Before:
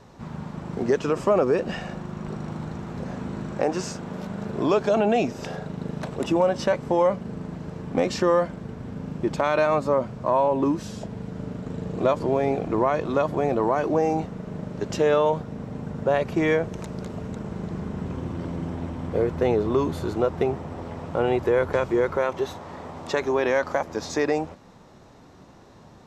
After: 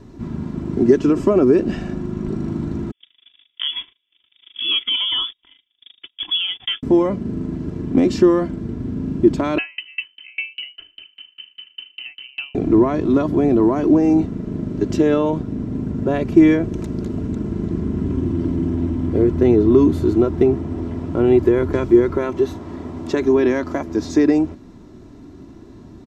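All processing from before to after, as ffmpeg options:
-filter_complex "[0:a]asettb=1/sr,asplit=3[a][b][c];[a]atrim=end=2.914[d];[b]atrim=start=2.91:end=6.83,asetpts=PTS-STARTPTS,afade=t=in:d=0.004:c=qsin,afade=t=out:st=3.916:d=0.004:c=qsin,highpass=f=200:w=0.5412,highpass=f=200:w=1.3066,agate=range=-37dB:threshold=-32dB:ratio=16:release=100:detection=peak,lowpass=f=3.1k:t=q:w=0.5098,lowpass=f=3.1k:t=q:w=0.6013,lowpass=f=3.1k:t=q:w=0.9,lowpass=f=3.1k:t=q:w=2.563,afreqshift=-3700[e];[c]atrim=start=6.826[f];[d][e]acrossfade=d=0.004:c1=hsin:c2=qsin[g];[g][f]acrossfade=d=0.004:c1=qsin:c2=hsin,asettb=1/sr,asplit=3[h][i][j];[h]atrim=end=9.584[k];[i]atrim=start=9.58:end=12.55,asetpts=PTS-STARTPTS,afade=t=in:d=0.004:c=qsin,afade=t=out:st=2.966:d=0.004:c=qsin,lowpass=f=2.7k:t=q:w=0.5098,lowpass=f=2.7k:t=q:w=0.6013,lowpass=f=2.7k:t=q:w=0.9,lowpass=f=2.7k:t=q:w=2.563,afreqshift=-3200,aeval=exprs='val(0)*pow(10,-34*if(lt(mod(5*n/s,1),2*abs(5)/1000),1-mod(5*n/s,1)/(2*abs(5)/1000),(mod(5*n/s,1)-2*abs(5)/1000)/(1-2*abs(5)/1000))/20)':c=same[l];[j]atrim=start=12.546[m];[k][l]acrossfade=d=0.004:c1=hsin:c2=qsin[n];[n][m]acrossfade=d=0.004:c1=qsin:c2=hsin,lowshelf=f=440:t=q:w=1.5:g=10.5,aecho=1:1:3:0.47,volume=-1dB"

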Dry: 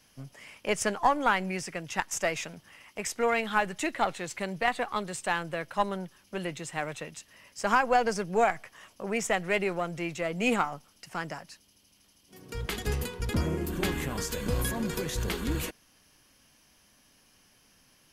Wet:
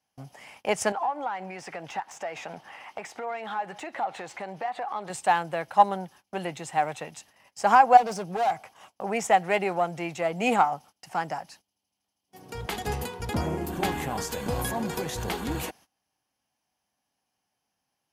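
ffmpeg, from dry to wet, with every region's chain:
-filter_complex "[0:a]asettb=1/sr,asplit=3[a][b][c];[a]atrim=end=0.924[d];[b]atrim=start=0.92:end=5.1,asetpts=PTS-STARTPTS,afade=t=in:d=0.004:c=qsin,afade=t=out:st=4.176:d=0.004:c=qsin,acompressor=threshold=-38dB:ratio=8:attack=3.2:release=140:knee=1:detection=peak,asplit=2[e][f];[f]highpass=f=720:p=1,volume=16dB,asoftclip=type=tanh:threshold=-24.5dB[g];[e][g]amix=inputs=2:normalize=0,lowpass=f=1.6k:p=1,volume=-6dB[h];[c]atrim=start=5.096[i];[d][h]acrossfade=d=0.004:c1=hsin:c2=qsin[j];[j][i]acrossfade=d=0.004:c1=qsin:c2=hsin,asettb=1/sr,asplit=3[k][l][m];[k]atrim=end=7.974[n];[l]atrim=start=7.97:end=8.92,asetpts=PTS-STARTPTS,afade=t=in:d=0.004:c=qsin,afade=t=out:st=0.946:d=0.004:c=qsin,bandreject=f=1.8k:w=5.4,volume=30.5dB,asoftclip=hard,volume=-30.5dB[o];[m]atrim=start=8.916[p];[n][o]acrossfade=d=0.004:c1=hsin:c2=qsin[q];[q][p]acrossfade=d=0.004:c1=qsin:c2=hsin,highpass=71,agate=range=-20dB:threshold=-53dB:ratio=16:detection=peak,equalizer=f=790:t=o:w=0.52:g=13.5"

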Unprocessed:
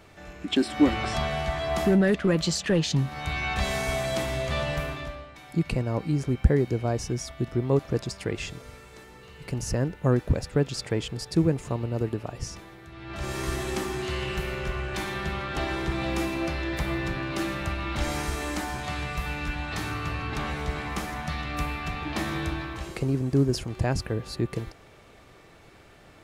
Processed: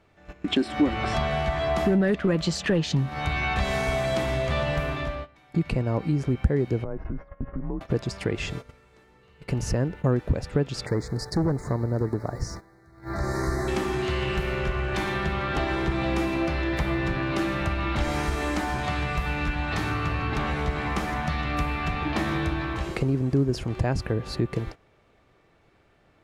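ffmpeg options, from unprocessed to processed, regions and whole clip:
-filter_complex "[0:a]asettb=1/sr,asplit=3[a][b][c];[a]atrim=end=6.844[d];[b]atrim=start=6.84:end=7.81,asetpts=PTS-STARTPTS,afade=t=in:d=0.004:c=qsin,afade=t=out:st=0.966:d=0.004:c=qsin,lowpass=f=1.7k:w=0.5412,lowpass=f=1.7k:w=1.3066,acompressor=threshold=-32dB:ratio=16:attack=3.2:release=140:knee=1:detection=peak,afreqshift=-99[e];[c]atrim=start=7.806[f];[d][e]acrossfade=d=0.004:c1=hsin:c2=qsin[g];[g][f]acrossfade=d=0.004:c1=qsin:c2=hsin,asettb=1/sr,asplit=3[h][i][j];[h]atrim=end=10.864[k];[i]atrim=start=10.86:end=13.68,asetpts=PTS-STARTPTS,afade=t=in:d=0.004:c=qsin,afade=t=out:st=2.816:d=0.004:c=qsin,volume=21.5dB,asoftclip=hard,volume=-21.5dB,acrusher=bits=8:mix=0:aa=0.5,asuperstop=centerf=2900:order=8:qfactor=1.5[l];[j]atrim=start=13.676[m];[k][l]acrossfade=d=0.004:c1=hsin:c2=qsin[n];[n][m]acrossfade=d=0.004:c1=qsin:c2=hsin,agate=range=-16dB:threshold=-40dB:ratio=16:detection=peak,highshelf=f=5k:g=-11,acompressor=threshold=-33dB:ratio=2,volume=7.5dB"

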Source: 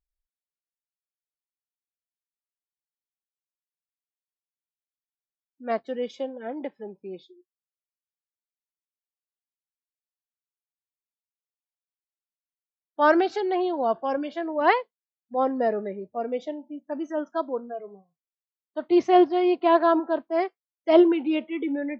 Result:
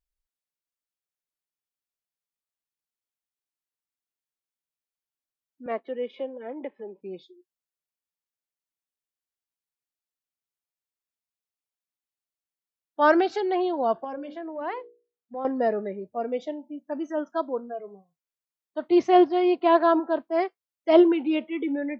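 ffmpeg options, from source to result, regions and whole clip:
-filter_complex "[0:a]asettb=1/sr,asplit=3[a][b][c];[a]atrim=end=5.664[d];[b]atrim=start=5.66:end=7.01,asetpts=PTS-STARTPTS,afade=t=in:d=0.004:c=qsin,afade=t=out:st=1.346:d=0.004:c=qsin,acompressor=mode=upward:threshold=-32dB:ratio=2.5:attack=3.2:release=140:knee=2.83:detection=peak,highpass=f=250:w=0.5412,highpass=f=250:w=1.3066,equalizer=f=290:t=q:w=4:g=-3,equalizer=f=740:t=q:w=4:g=-6,equalizer=f=1.5k:t=q:w=4:g=-9,lowpass=f=2.8k:w=0.5412,lowpass=f=2.8k:w=1.3066[e];[c]atrim=start=7.006[f];[d][e]acrossfade=d=0.004:c1=hsin:c2=qsin[g];[g][f]acrossfade=d=0.004:c1=qsin:c2=hsin,asettb=1/sr,asplit=3[h][i][j];[h]atrim=end=14.044[k];[i]atrim=start=14.04:end=15.45,asetpts=PTS-STARTPTS,afade=t=in:d=0.004:c=qsin,afade=t=out:st=1.406:d=0.004:c=qsin,lowpass=f=1.8k:p=1,bandreject=f=60:t=h:w=6,bandreject=f=120:t=h:w=6,bandreject=f=180:t=h:w=6,bandreject=f=240:t=h:w=6,bandreject=f=300:t=h:w=6,bandreject=f=360:t=h:w=6,bandreject=f=420:t=h:w=6,bandreject=f=480:t=h:w=6,bandreject=f=540:t=h:w=6,acompressor=threshold=-36dB:ratio=2:attack=3.2:release=140:knee=1:detection=peak[l];[j]atrim=start=15.446[m];[k][l]acrossfade=d=0.004:c1=hsin:c2=qsin[n];[n][m]acrossfade=d=0.004:c1=qsin:c2=hsin"

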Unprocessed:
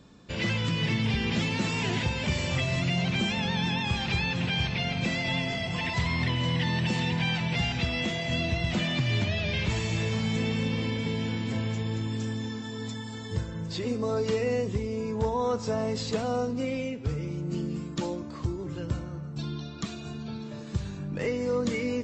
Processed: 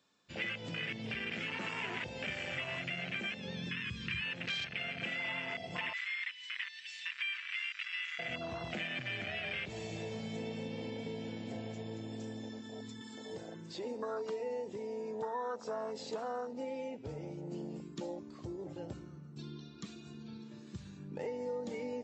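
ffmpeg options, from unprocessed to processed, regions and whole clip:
-filter_complex "[0:a]asettb=1/sr,asplit=3[a][b][c];[a]atrim=end=3.334[d];[b]atrim=start=3.33:end=4.21,asetpts=PTS-STARTPTS,afade=t=in:d=0.004:c=qsin,afade=t=out:st=0.876:d=0.004:c=qsin,asubboost=boost=9.5:cutoff=190,asuperstop=centerf=760:order=12:qfactor=2.1[e];[c]atrim=start=4.206[f];[d][e]acrossfade=d=0.004:c1=hsin:c2=qsin[g];[g][f]acrossfade=d=0.004:c1=qsin:c2=hsin,asettb=1/sr,asplit=3[h][i][j];[h]atrim=end=5.934[k];[i]atrim=start=5.93:end=8.19,asetpts=PTS-STARTPTS,afade=t=in:d=0.004:c=qsin,afade=t=out:st=2.256:d=0.004:c=qsin,asuperpass=centerf=4200:order=8:qfactor=0.54,aeval=exprs='val(0)+0.00178*(sin(2*PI*50*n/s)+sin(2*PI*2*50*n/s)/2+sin(2*PI*3*50*n/s)/3+sin(2*PI*4*50*n/s)/4+sin(2*PI*5*50*n/s)/5)':c=same[l];[j]atrim=start=8.186[m];[k][l]acrossfade=d=0.004:c1=hsin:c2=qsin[n];[n][m]acrossfade=d=0.004:c1=qsin:c2=hsin,asettb=1/sr,asplit=3[o][p][q];[o]atrim=end=13.014[r];[p]atrim=start=13.01:end=16.95,asetpts=PTS-STARTPTS,afade=t=in:d=0.004:c=qsin,afade=t=out:st=3.936:d=0.004:c=qsin,highpass=210,acompressor=mode=upward:threshold=-30dB:ratio=2.5:attack=3.2:release=140:knee=2.83:detection=peak[s];[q]atrim=start=16.946[t];[r][s]acrossfade=d=0.004:c1=hsin:c2=qsin[u];[u][t]acrossfade=d=0.004:c1=qsin:c2=hsin,afwtdn=0.0282,highpass=f=1.3k:p=1,acompressor=threshold=-43dB:ratio=3,volume=5.5dB"

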